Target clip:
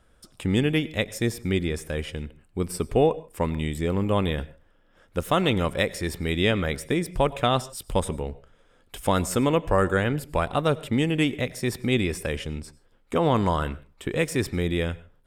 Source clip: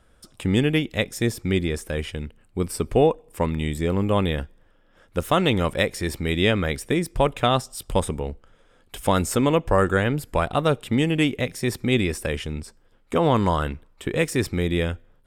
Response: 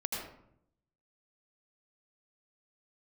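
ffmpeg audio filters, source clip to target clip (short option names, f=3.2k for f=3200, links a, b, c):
-filter_complex "[0:a]asplit=2[a][b];[1:a]atrim=start_sample=2205,atrim=end_sample=6174,asetrate=37044,aresample=44100[c];[b][c]afir=irnorm=-1:irlink=0,volume=-20.5dB[d];[a][d]amix=inputs=2:normalize=0,volume=-3dB"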